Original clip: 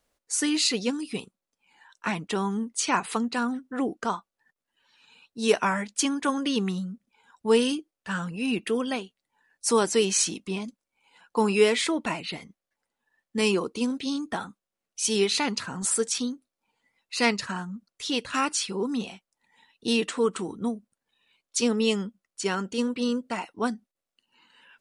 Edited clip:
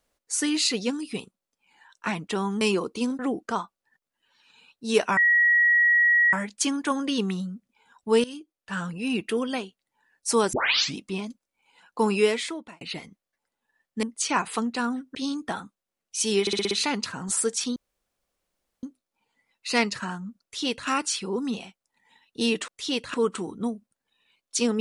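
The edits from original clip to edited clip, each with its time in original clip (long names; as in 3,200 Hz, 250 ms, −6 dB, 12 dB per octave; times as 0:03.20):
0:02.61–0:03.73: swap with 0:13.41–0:13.99
0:05.71: insert tone 1,910 Hz −16 dBFS 1.16 s
0:07.62–0:08.20: fade in, from −17.5 dB
0:09.91: tape start 0.45 s
0:11.53–0:12.19: fade out
0:15.25: stutter 0.06 s, 6 plays
0:16.30: splice in room tone 1.07 s
0:17.89–0:18.35: duplicate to 0:20.15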